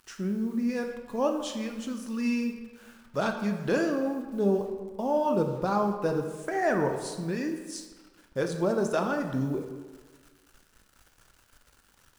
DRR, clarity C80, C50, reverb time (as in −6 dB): 4.0 dB, 8.5 dB, 7.0 dB, 1.4 s